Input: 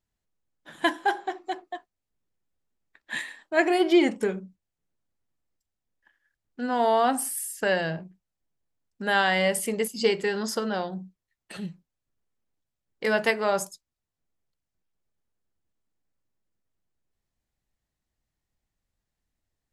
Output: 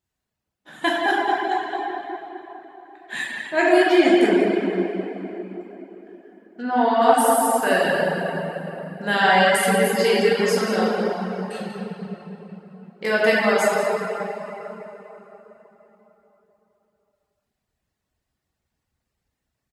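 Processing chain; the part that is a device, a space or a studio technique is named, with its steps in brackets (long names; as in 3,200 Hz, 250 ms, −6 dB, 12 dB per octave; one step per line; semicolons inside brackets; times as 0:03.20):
high-pass filter 50 Hz
cave (single-tap delay 194 ms −12 dB; convolution reverb RT60 3.9 s, pre-delay 10 ms, DRR −8 dB)
reverb reduction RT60 0.59 s
0:06.62–0:07.02: high-frequency loss of the air 150 metres
four-comb reverb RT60 3.1 s, combs from 32 ms, DRR 17 dB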